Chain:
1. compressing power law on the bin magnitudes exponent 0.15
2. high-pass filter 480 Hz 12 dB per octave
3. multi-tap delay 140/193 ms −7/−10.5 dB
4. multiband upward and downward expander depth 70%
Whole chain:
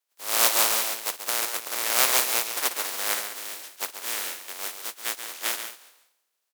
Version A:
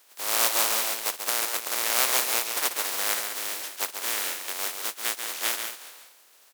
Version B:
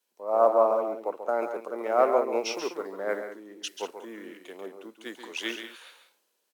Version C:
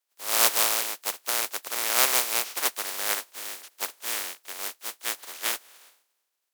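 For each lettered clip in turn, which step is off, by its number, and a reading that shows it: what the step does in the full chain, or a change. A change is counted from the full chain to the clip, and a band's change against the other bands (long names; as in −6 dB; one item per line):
4, change in crest factor −4.5 dB
1, 8 kHz band −23.5 dB
3, change in integrated loudness −1.0 LU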